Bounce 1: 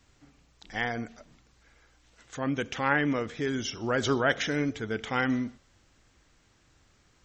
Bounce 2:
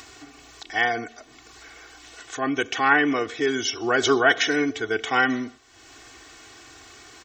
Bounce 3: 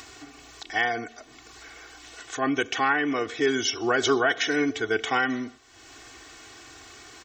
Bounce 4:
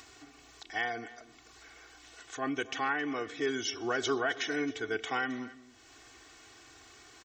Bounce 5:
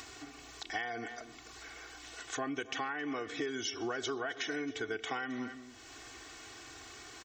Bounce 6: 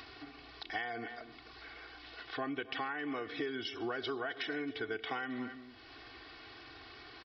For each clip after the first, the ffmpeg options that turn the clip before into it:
ffmpeg -i in.wav -af "highpass=frequency=400:poles=1,aecho=1:1:2.7:0.98,acompressor=mode=upward:threshold=-41dB:ratio=2.5,volume=6dB" out.wav
ffmpeg -i in.wav -af "alimiter=limit=-11.5dB:level=0:latency=1:release=455" out.wav
ffmpeg -i in.wav -af "aecho=1:1:268:0.119,volume=-8.5dB" out.wav
ffmpeg -i in.wav -af "acompressor=threshold=-38dB:ratio=16,volume=5dB" out.wav
ffmpeg -i in.wav -af "aresample=11025,aresample=44100,volume=-1dB" out.wav

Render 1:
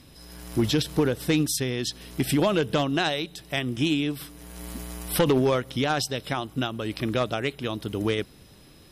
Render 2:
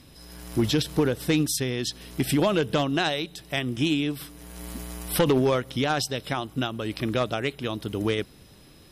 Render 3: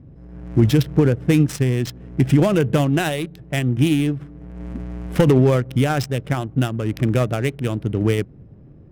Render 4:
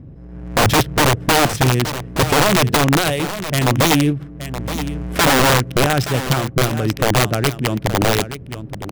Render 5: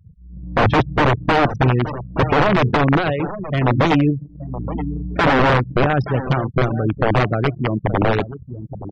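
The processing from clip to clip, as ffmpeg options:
ffmpeg -i in.wav -af anull out.wav
ffmpeg -i in.wav -af "adynamicsmooth=sensitivity=5.5:basefreq=640,equalizer=frequency=125:width_type=o:width=1:gain=8,equalizer=frequency=1000:width_type=o:width=1:gain=-5,equalizer=frequency=4000:width_type=o:width=1:gain=-9,volume=5.5dB" out.wav
ffmpeg -i in.wav -af "areverse,acompressor=mode=upward:threshold=-35dB:ratio=2.5,areverse,aeval=exprs='(mod(3.76*val(0)+1,2)-1)/3.76':channel_layout=same,aecho=1:1:873:0.266,volume=3.5dB" out.wav
ffmpeg -i in.wav -af "afftfilt=real='re*gte(hypot(re,im),0.1)':imag='im*gte(hypot(re,im),0.1)':win_size=1024:overlap=0.75,anlmdn=25.1,lowpass=2300" out.wav

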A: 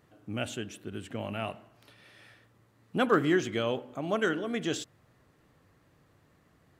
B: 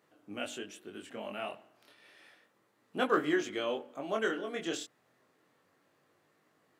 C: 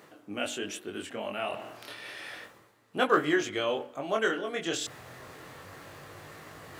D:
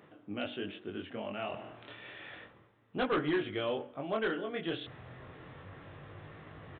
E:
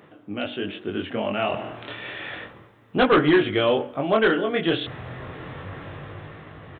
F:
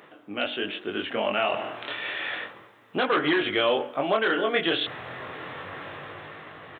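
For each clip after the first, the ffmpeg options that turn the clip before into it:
ffmpeg -i in.wav -af "highpass=290,flanger=delay=19.5:depth=4.6:speed=0.31" out.wav
ffmpeg -i in.wav -af "asubboost=boost=9.5:cutoff=76,areverse,acompressor=mode=upward:threshold=-36dB:ratio=2.5,areverse,volume=5.5dB" out.wav
ffmpeg -i in.wav -af "lowshelf=frequency=250:gain=10.5,aresample=8000,volume=19.5dB,asoftclip=hard,volume=-19.5dB,aresample=44100,volume=-6dB" out.wav
ffmpeg -i in.wav -af "dynaudnorm=framelen=120:gausssize=13:maxgain=6dB,volume=7.5dB" out.wav
ffmpeg -i in.wav -af "highpass=frequency=670:poles=1,alimiter=limit=-17dB:level=0:latency=1:release=129,volume=4dB" out.wav

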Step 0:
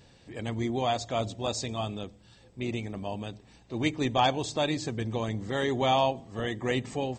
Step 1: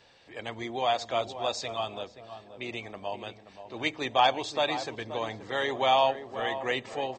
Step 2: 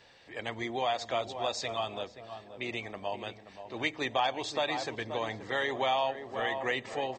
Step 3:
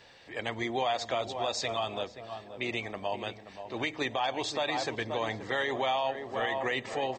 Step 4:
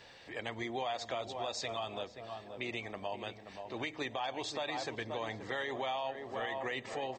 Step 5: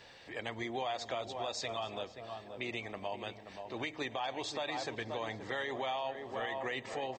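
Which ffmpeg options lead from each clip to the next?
ffmpeg -i in.wav -filter_complex "[0:a]acrossover=split=460 5600:gain=0.158 1 0.158[link_01][link_02][link_03];[link_01][link_02][link_03]amix=inputs=3:normalize=0,asplit=2[link_04][link_05];[link_05]adelay=528,lowpass=frequency=1100:poles=1,volume=-10dB,asplit=2[link_06][link_07];[link_07]adelay=528,lowpass=frequency=1100:poles=1,volume=0.34,asplit=2[link_08][link_09];[link_09]adelay=528,lowpass=frequency=1100:poles=1,volume=0.34,asplit=2[link_10][link_11];[link_11]adelay=528,lowpass=frequency=1100:poles=1,volume=0.34[link_12];[link_04][link_06][link_08][link_10][link_12]amix=inputs=5:normalize=0,volume=3dB" out.wav
ffmpeg -i in.wav -af "equalizer=frequency=1900:width=4.8:gain=4.5,acompressor=threshold=-28dB:ratio=2.5" out.wav
ffmpeg -i in.wav -af "alimiter=limit=-23.5dB:level=0:latency=1:release=51,volume=3dB" out.wav
ffmpeg -i in.wav -af "acompressor=threshold=-46dB:ratio=1.5" out.wav
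ffmpeg -i in.wav -af "aecho=1:1:281:0.075" out.wav

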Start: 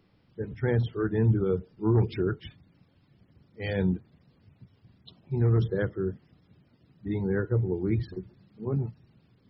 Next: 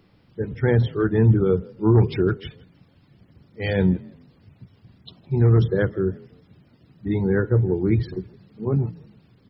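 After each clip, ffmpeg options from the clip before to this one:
ffmpeg -i in.wav -filter_complex "[0:a]asplit=3[link_01][link_02][link_03];[link_02]adelay=162,afreqshift=34,volume=-24dB[link_04];[link_03]adelay=324,afreqshift=68,volume=-34.5dB[link_05];[link_01][link_04][link_05]amix=inputs=3:normalize=0,volume=7dB" out.wav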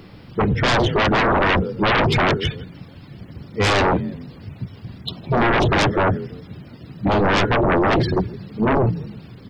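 ffmpeg -i in.wav -af "aeval=exprs='0.501*sin(PI/2*8.91*val(0)/0.501)':channel_layout=same,volume=-7.5dB" out.wav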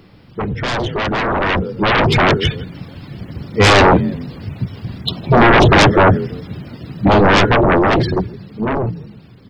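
ffmpeg -i in.wav -af "dynaudnorm=framelen=320:gausssize=13:maxgain=13.5dB,volume=-3dB" out.wav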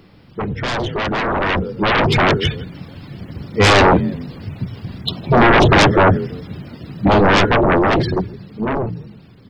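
ffmpeg -i in.wav -af "bandreject=frequency=60:width_type=h:width=6,bandreject=frequency=120:width_type=h:width=6,volume=-1.5dB" out.wav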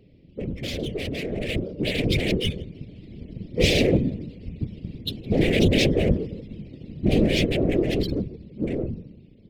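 ffmpeg -i in.wav -af "asuperstop=centerf=1100:order=8:qfactor=0.65,adynamicsmooth=sensitivity=5.5:basefreq=2500,afftfilt=real='hypot(re,im)*cos(2*PI*random(0))':imag='hypot(re,im)*sin(2*PI*random(1))':win_size=512:overlap=0.75" out.wav

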